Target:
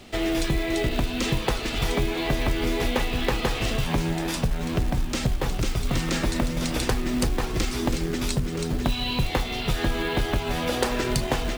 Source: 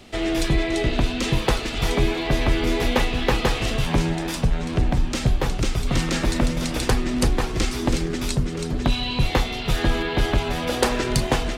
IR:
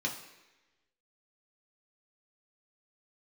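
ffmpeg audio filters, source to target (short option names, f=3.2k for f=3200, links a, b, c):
-af "acrusher=bits=5:mode=log:mix=0:aa=0.000001,acompressor=threshold=-21dB:ratio=3"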